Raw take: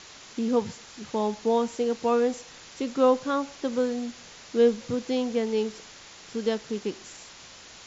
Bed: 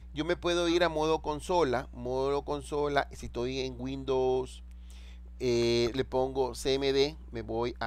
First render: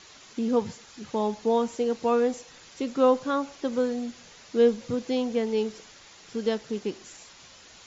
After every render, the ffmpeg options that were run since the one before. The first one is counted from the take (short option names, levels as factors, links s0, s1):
-af "afftdn=nr=6:nf=-48"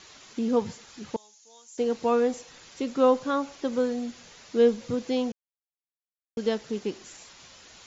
-filter_complex "[0:a]asettb=1/sr,asplit=3[s0][s1][s2];[s0]atrim=end=1.164[s3];[s1]atrim=start=1.16:end=1.78,asetpts=PTS-STARTPTS,afade=t=in:d=0.004:c=qsin,afade=t=out:st=0.616:d=0.004:c=qsin,bandpass=f=6700:t=q:w=3.5[s4];[s2]atrim=start=1.776[s5];[s3][s4]acrossfade=d=0.004:c1=hsin:c2=qsin[s6];[s6][s5]acrossfade=d=0.004:c1=qsin:c2=hsin,asplit=3[s7][s8][s9];[s7]atrim=end=5.32,asetpts=PTS-STARTPTS,afade=t=out:st=5.316:d=0.004:c=hsin[s10];[s8]atrim=start=5.32:end=6.37,asetpts=PTS-STARTPTS,volume=0[s11];[s9]atrim=start=6.37,asetpts=PTS-STARTPTS,afade=t=in:d=0.004:c=hsin[s12];[s10][s11][s12]concat=n=3:v=0:a=1"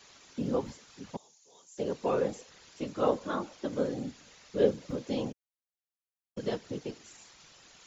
-filter_complex "[0:a]acrossover=split=130|530|3400[s0][s1][s2][s3];[s0]acrusher=bits=5:mode=log:mix=0:aa=0.000001[s4];[s4][s1][s2][s3]amix=inputs=4:normalize=0,afftfilt=real='hypot(re,im)*cos(2*PI*random(0))':imag='hypot(re,im)*sin(2*PI*random(1))':win_size=512:overlap=0.75"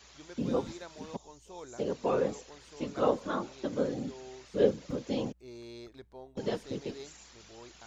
-filter_complex "[1:a]volume=0.106[s0];[0:a][s0]amix=inputs=2:normalize=0"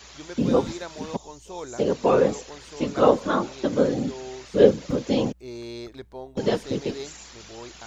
-af "volume=3.16"